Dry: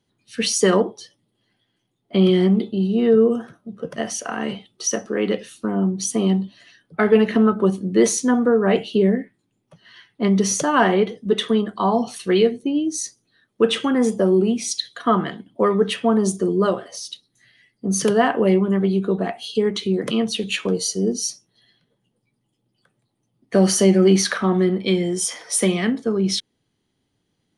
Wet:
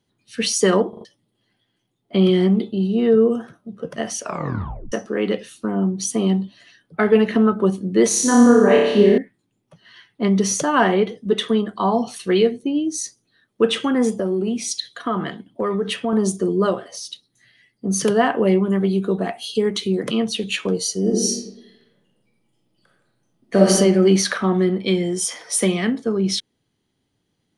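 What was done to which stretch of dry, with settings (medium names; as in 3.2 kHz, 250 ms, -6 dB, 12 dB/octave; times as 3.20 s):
0.89 s: stutter in place 0.04 s, 4 plays
4.21 s: tape stop 0.71 s
8.08–9.18 s: flutter echo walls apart 5 m, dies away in 1 s
14.10–16.13 s: compression 4:1, threshold -18 dBFS
18.65–20.03 s: treble shelf 7.7 kHz +10 dB
21.00–23.70 s: reverb throw, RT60 0.94 s, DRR -2 dB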